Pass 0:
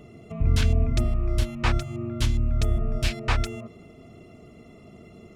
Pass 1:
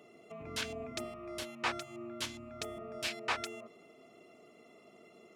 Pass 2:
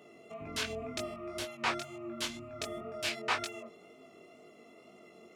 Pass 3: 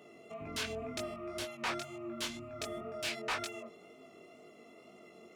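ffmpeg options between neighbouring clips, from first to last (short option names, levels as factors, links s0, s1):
-af "highpass=400,volume=0.531"
-af "flanger=delay=19:depth=3.5:speed=2,volume=1.88"
-af "asoftclip=type=tanh:threshold=0.0335"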